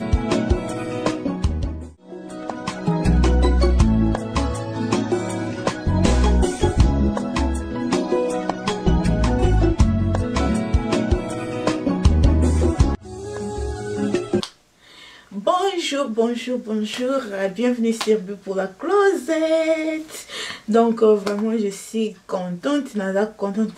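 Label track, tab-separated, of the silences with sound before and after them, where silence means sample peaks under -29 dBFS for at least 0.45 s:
14.470000	15.340000	silence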